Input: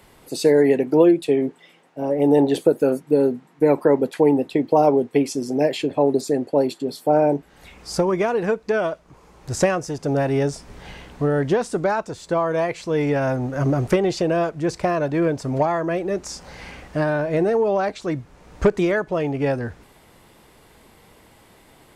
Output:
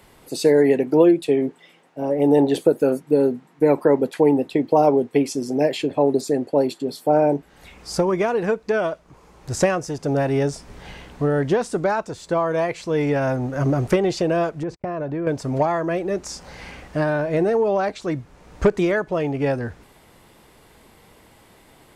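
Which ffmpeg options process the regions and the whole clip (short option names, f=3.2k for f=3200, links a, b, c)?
-filter_complex "[0:a]asettb=1/sr,asplit=3[a][b][c];[a]atrim=end=14.634[d];[b]atrim=start=14.63:end=15.27,asetpts=PTS-STARTPTS,afade=t=in:d=0.004:c=qsin,afade=t=out:st=0.636:d=0.004:c=qsin,lowpass=f=1.2k:p=1,agate=range=-49dB:threshold=-36dB:ratio=16:release=100:detection=peak,acompressor=threshold=-23dB:ratio=5:attack=3.2:release=140:knee=1:detection=peak[e];[c]atrim=start=15.266[f];[d][e]acrossfade=d=0.004:c1=hsin:c2=qsin[g];[g][f]acrossfade=d=0.004:c1=qsin:c2=hsin"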